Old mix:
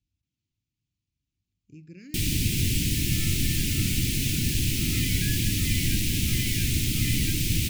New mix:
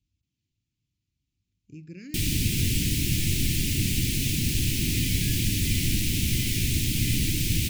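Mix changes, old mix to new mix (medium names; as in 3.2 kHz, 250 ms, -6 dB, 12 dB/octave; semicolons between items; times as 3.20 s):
speech +3.5 dB; second sound: remove resonant high-pass 1.4 kHz, resonance Q 8.8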